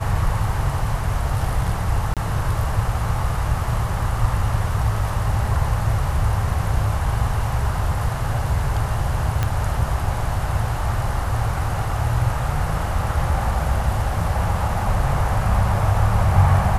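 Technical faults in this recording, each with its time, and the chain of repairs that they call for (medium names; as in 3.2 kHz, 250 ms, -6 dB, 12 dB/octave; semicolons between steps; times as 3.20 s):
2.14–2.17 s: dropout 27 ms
9.43 s: pop -8 dBFS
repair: de-click; interpolate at 2.14 s, 27 ms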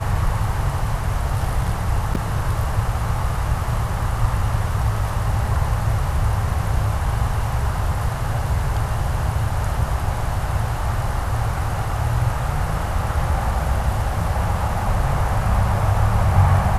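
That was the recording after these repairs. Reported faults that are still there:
9.43 s: pop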